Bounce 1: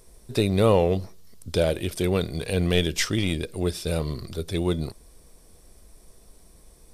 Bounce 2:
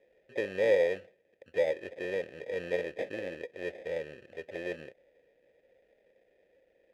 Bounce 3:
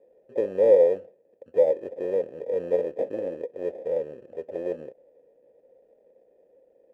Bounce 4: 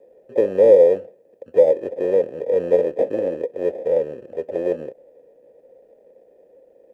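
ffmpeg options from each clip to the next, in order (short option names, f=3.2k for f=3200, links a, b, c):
-filter_complex "[0:a]acrusher=samples=31:mix=1:aa=0.000001,asplit=3[a][b][c];[a]bandpass=f=530:t=q:w=8,volume=0dB[d];[b]bandpass=f=1.84k:t=q:w=8,volume=-6dB[e];[c]bandpass=f=2.48k:t=q:w=8,volume=-9dB[f];[d][e][f]amix=inputs=3:normalize=0,volume=1.5dB"
-af "equalizer=f=125:t=o:w=1:g=4,equalizer=f=250:t=o:w=1:g=8,equalizer=f=500:t=o:w=1:g=10,equalizer=f=1k:t=o:w=1:g=9,equalizer=f=2k:t=o:w=1:g=-10,equalizer=f=4k:t=o:w=1:g=-7,volume=-4dB"
-filter_complex "[0:a]acrossover=split=480|3000[a][b][c];[b]acompressor=threshold=-23dB:ratio=6[d];[a][d][c]amix=inputs=3:normalize=0,volume=8dB"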